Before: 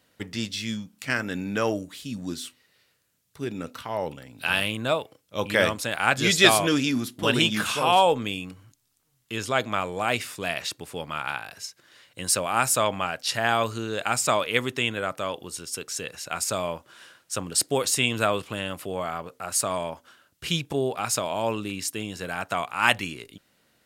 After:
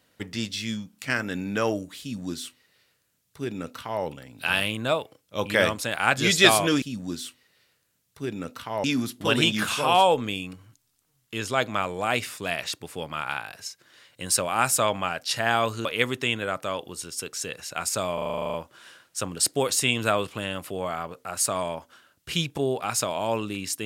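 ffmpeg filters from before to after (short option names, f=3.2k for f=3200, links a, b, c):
-filter_complex "[0:a]asplit=14[a][b][c][d][e][f][g][h][i][j][k][l][m][n];[a]atrim=end=6.822[o];[b]atrim=start=2.008:end=4.032[p];[c]atrim=start=6.818:end=13.832[q];[d]atrim=start=14.398:end=16.732[r];[e]atrim=start=16.688:end=16.732[s];[f]atrim=start=16.688:end=16.732[t];[g]atrim=start=16.688:end=16.732[u];[h]atrim=start=16.688:end=16.732[v];[i]atrim=start=16.688:end=16.732[w];[j]atrim=start=16.688:end=16.732[x];[k]atrim=start=16.688:end=16.732[y];[l]atrim=start=16.688:end=16.732[z];[m]atrim=start=16.688:end=16.732[aa];[n]atrim=start=16.688[ab];[o][p]acrossfade=d=0.004:c1=hsin:c2=hsin[ac];[ac][q]acrossfade=d=0.004:c1=hsin:c2=hsin[ad];[ad][r]acrossfade=d=0.004:c1=hsin:c2=hsin[ae];[ae][s]acrossfade=d=0.004:c1=hsin:c2=hsin[af];[af][t]acrossfade=d=0.004:c1=hsin:c2=hsin[ag];[ag][u]acrossfade=d=0.004:c1=hsin:c2=hsin[ah];[ah][v]acrossfade=d=0.004:c1=hsin:c2=hsin[ai];[ai][w]acrossfade=d=0.004:c1=hsin:c2=hsin[aj];[aj][x]acrossfade=d=0.004:c1=hsin:c2=hsin[ak];[ak][y]acrossfade=d=0.004:c1=hsin:c2=hsin[al];[al][z]acrossfade=d=0.004:c1=hsin:c2=hsin[am];[am][aa]acrossfade=d=0.004:c1=hsin:c2=hsin[an];[an][ab]acrossfade=d=0.004:c1=hsin:c2=hsin"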